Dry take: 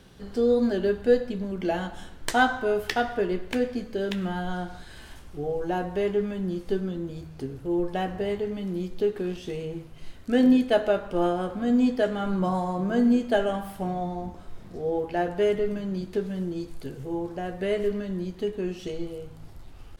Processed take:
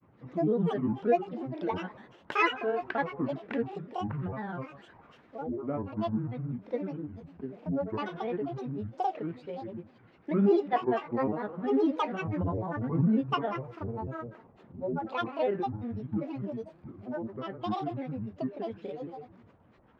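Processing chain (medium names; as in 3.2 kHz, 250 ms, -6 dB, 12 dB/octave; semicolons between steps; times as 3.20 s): Chebyshev band-pass 190–1700 Hz, order 2; granulator, grains 20 per s, spray 22 ms, pitch spread up and down by 12 st; trim -3.5 dB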